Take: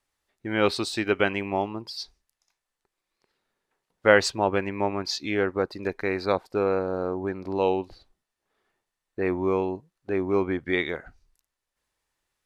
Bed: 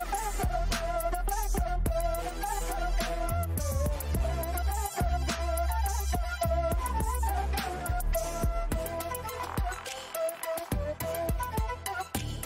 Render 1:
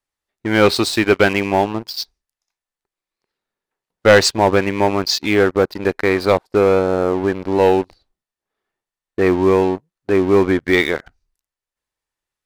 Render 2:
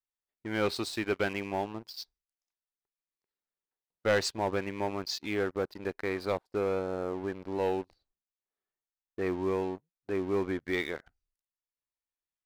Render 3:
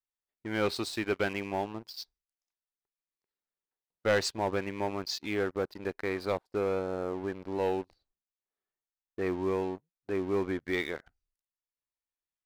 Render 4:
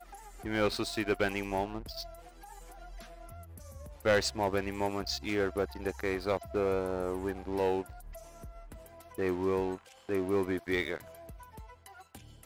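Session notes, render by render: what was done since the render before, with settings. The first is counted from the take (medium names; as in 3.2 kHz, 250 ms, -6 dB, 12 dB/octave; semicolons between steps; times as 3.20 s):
waveshaping leveller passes 3
trim -16.5 dB
no audible change
add bed -18 dB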